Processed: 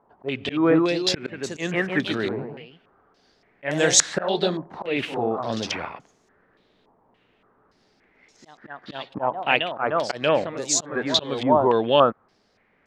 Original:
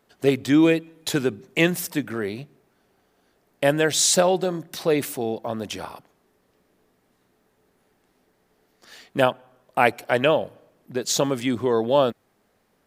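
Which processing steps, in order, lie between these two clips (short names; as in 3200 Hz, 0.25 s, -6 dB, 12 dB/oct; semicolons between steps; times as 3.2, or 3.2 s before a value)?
echoes that change speed 0.242 s, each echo +1 st, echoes 3, each echo -6 dB; auto swell 0.231 s; stepped low-pass 3.5 Hz 940–6600 Hz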